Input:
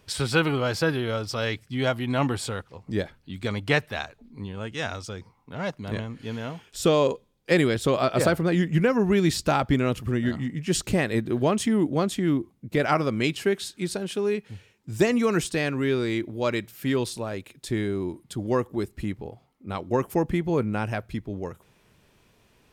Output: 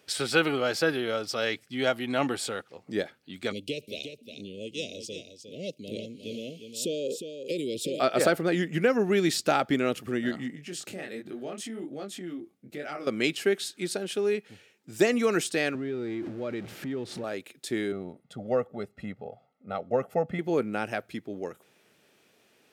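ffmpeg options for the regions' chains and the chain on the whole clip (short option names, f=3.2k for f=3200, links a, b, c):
-filter_complex "[0:a]asettb=1/sr,asplit=3[a][b][c];[a]atrim=end=3.524[d];[b]atrim=start=3.52:end=8,asetpts=PTS-STARTPTS,afade=t=in:d=0.004:c=qsin,afade=t=out:st=4.476:d=0.004:c=qsin,acompressor=threshold=-23dB:ratio=10:attack=3.2:release=140:knee=1:detection=peak,asuperstop=centerf=1200:order=12:qfactor=0.62,aecho=1:1:357:0.376,atrim=end_sample=197568[e];[c]atrim=start=7.996[f];[d][e]acrossfade=d=0.004:c1=hsin:c2=qsin[g];[g][f]acrossfade=d=0.004:c1=qsin:c2=hsin,asettb=1/sr,asplit=3[h][i][j];[h]atrim=end=10.554[k];[i]atrim=start=10.55:end=13.07,asetpts=PTS-STARTPTS,afade=t=in:d=0.004:c=qsin,afade=t=out:st=2.516:d=0.004:c=qsin,flanger=delay=20:depth=6.7:speed=1.3,acompressor=threshold=-35dB:ratio=2.5:attack=3.2:release=140:knee=1:detection=peak,bandreject=f=1k:w=7.5[l];[j]atrim=start=13.066[m];[k][l]acrossfade=d=0.004:c1=hsin:c2=qsin[n];[n][m]acrossfade=d=0.004:c1=qsin:c2=hsin,asettb=1/sr,asplit=3[o][p][q];[o]atrim=end=15.754[r];[p]atrim=start=15.75:end=17.24,asetpts=PTS-STARTPTS,afade=t=in:d=0.004:c=qsin,afade=t=out:st=1.486:d=0.004:c=qsin,aeval=exprs='val(0)+0.5*0.0266*sgn(val(0))':c=same,aemphasis=mode=reproduction:type=riaa,acompressor=threshold=-27dB:ratio=4:attack=3.2:release=140:knee=1:detection=peak[s];[q]atrim=start=17.236[t];[r][s]acrossfade=d=0.004:c1=hsin:c2=qsin[u];[u][t]acrossfade=d=0.004:c1=qsin:c2=hsin,asettb=1/sr,asplit=3[v][w][x];[v]atrim=end=17.924[y];[w]atrim=start=17.92:end=20.39,asetpts=PTS-STARTPTS,afade=t=in:d=0.004:c=qsin,afade=t=out:st=2.466:d=0.004:c=qsin,lowpass=f=1.1k:p=1,aecho=1:1:1.5:0.84,atrim=end_sample=108927[z];[x]atrim=start=20.386[aa];[y][z]acrossfade=d=0.004:c1=hsin:c2=qsin[ab];[ab][aa]acrossfade=d=0.004:c1=qsin:c2=hsin,highpass=270,equalizer=f=1k:t=o:w=0.22:g=-11"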